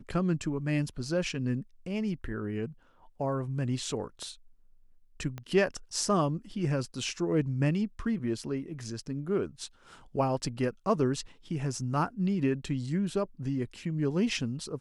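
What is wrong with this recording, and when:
0:05.38: click −25 dBFS

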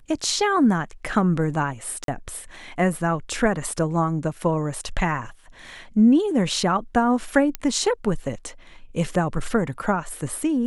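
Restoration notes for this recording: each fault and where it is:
0:02.04–0:02.08: drop-out 42 ms
0:07.55: click −10 dBFS

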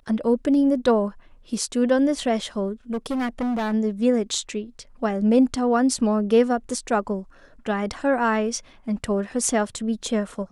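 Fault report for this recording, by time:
0:02.92–0:03.74: clipping −22 dBFS

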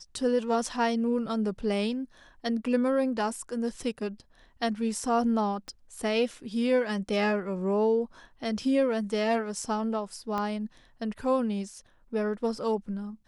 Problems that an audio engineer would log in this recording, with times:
0:05.68: click −28 dBFS
0:10.38: click −19 dBFS

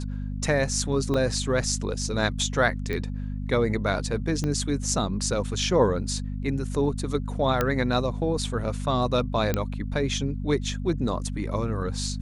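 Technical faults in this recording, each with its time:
mains hum 50 Hz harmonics 5 −31 dBFS
0:01.14: drop-out 3.1 ms
0:02.93: click −18 dBFS
0:04.44: click −16 dBFS
0:07.61: click −9 dBFS
0:09.54: click −10 dBFS

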